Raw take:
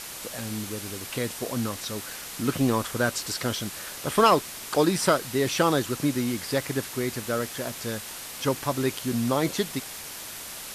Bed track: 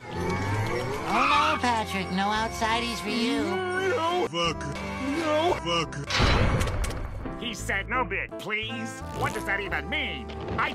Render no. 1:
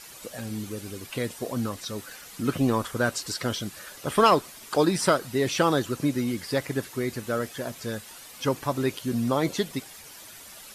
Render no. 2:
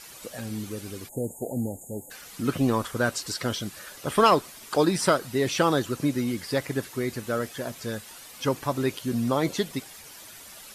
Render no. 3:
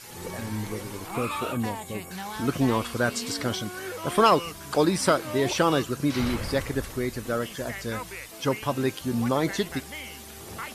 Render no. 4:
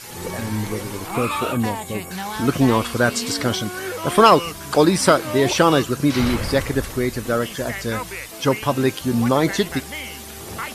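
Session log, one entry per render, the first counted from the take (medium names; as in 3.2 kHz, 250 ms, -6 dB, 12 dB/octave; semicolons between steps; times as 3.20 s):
noise reduction 10 dB, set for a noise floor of -39 dBFS
1.08–2.11 s: spectral selection erased 910–6500 Hz
add bed track -10.5 dB
trim +7 dB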